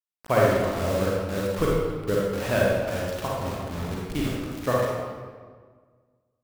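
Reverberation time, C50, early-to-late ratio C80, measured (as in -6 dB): 1.6 s, -2.5 dB, 0.5 dB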